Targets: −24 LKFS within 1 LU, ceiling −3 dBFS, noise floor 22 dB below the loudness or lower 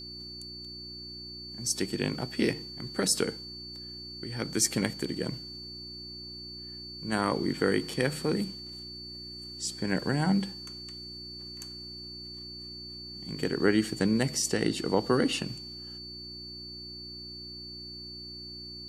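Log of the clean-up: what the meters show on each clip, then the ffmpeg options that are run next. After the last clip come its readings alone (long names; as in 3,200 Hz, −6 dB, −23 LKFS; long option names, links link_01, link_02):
mains hum 60 Hz; hum harmonics up to 360 Hz; level of the hum −48 dBFS; interfering tone 4,500 Hz; level of the tone −41 dBFS; integrated loudness −32.0 LKFS; sample peak −9.0 dBFS; target loudness −24.0 LKFS
→ -af "bandreject=frequency=60:width_type=h:width=4,bandreject=frequency=120:width_type=h:width=4,bandreject=frequency=180:width_type=h:width=4,bandreject=frequency=240:width_type=h:width=4,bandreject=frequency=300:width_type=h:width=4,bandreject=frequency=360:width_type=h:width=4"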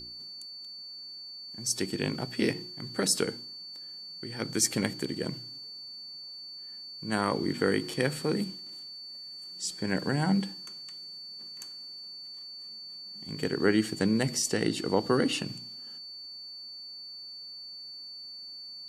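mains hum none found; interfering tone 4,500 Hz; level of the tone −41 dBFS
→ -af "bandreject=frequency=4500:width=30"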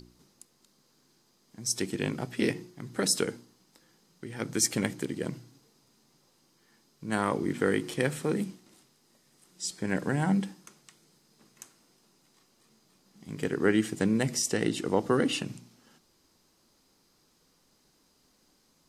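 interfering tone none found; integrated loudness −30.0 LKFS; sample peak −9.5 dBFS; target loudness −24.0 LKFS
→ -af "volume=6dB"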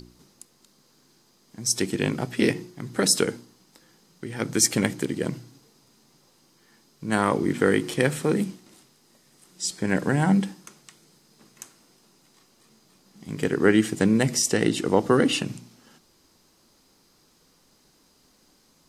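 integrated loudness −24.0 LKFS; sample peak −3.5 dBFS; background noise floor −62 dBFS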